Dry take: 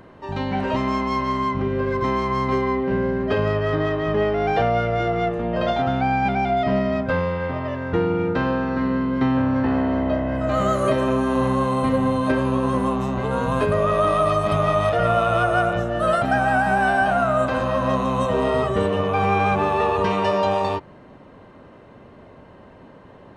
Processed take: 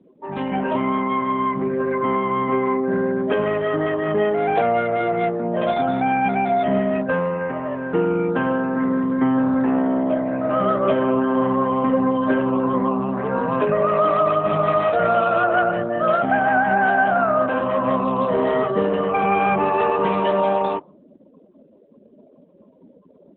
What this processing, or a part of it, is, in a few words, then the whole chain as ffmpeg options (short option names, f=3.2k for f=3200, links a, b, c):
mobile call with aggressive noise cancelling: -af "highpass=f=160:w=0.5412,highpass=f=160:w=1.3066,afftdn=nr=29:nf=-37,volume=2dB" -ar 8000 -c:a libopencore_amrnb -b:a 12200